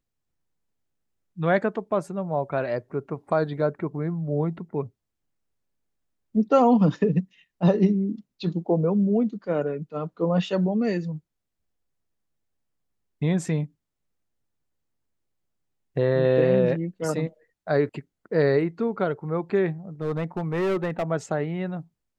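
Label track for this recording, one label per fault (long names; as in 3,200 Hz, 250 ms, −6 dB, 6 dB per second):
20.010000	21.040000	clipping −21.5 dBFS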